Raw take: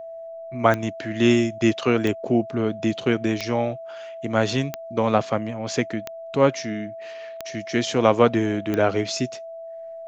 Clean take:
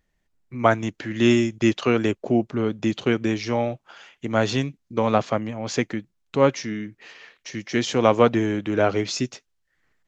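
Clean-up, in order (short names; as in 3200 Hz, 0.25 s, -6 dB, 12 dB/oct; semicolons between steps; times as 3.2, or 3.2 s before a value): de-click; notch 660 Hz, Q 30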